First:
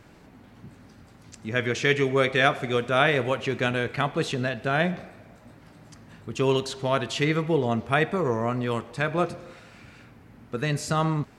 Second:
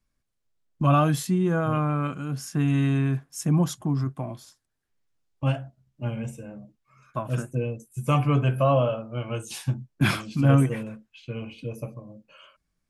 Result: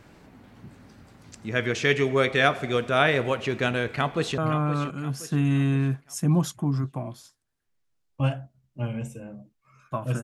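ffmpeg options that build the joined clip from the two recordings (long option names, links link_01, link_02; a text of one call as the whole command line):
ffmpeg -i cue0.wav -i cue1.wav -filter_complex "[0:a]apad=whole_dur=10.23,atrim=end=10.23,atrim=end=4.382[link_01];[1:a]atrim=start=1.608:end=7.46[link_02];[link_01][link_02]acrossfade=duration=0.004:curve1=hsin:curve2=hsin,asplit=2[link_03][link_04];[link_04]afade=type=in:start_time=3.87:duration=0.01,afade=type=out:start_time=4.38:duration=0.01,aecho=0:1:520|1040|1560|2080|2600:0.266073|0.119733|0.0538797|0.0242459|0.0109106[link_05];[link_03][link_05]amix=inputs=2:normalize=0" out.wav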